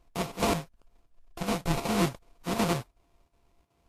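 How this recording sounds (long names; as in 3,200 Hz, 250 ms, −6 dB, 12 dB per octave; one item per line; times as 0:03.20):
a buzz of ramps at a fixed pitch in blocks of 64 samples
chopped level 2.7 Hz, depth 65%, duty 85%
aliases and images of a low sample rate 1,700 Hz, jitter 20%
Ogg Vorbis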